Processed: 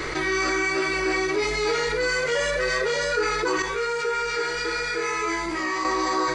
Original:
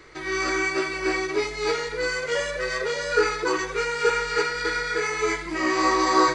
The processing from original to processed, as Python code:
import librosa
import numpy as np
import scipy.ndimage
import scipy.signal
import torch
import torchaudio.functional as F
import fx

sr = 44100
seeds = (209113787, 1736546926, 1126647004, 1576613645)

y = fx.rider(x, sr, range_db=10, speed_s=0.5)
y = fx.comb_fb(y, sr, f0_hz=67.0, decay_s=0.38, harmonics='all', damping=0.0, mix_pct=90, at=(3.62, 5.85))
y = fx.env_flatten(y, sr, amount_pct=70)
y = y * librosa.db_to_amplitude(-4.5)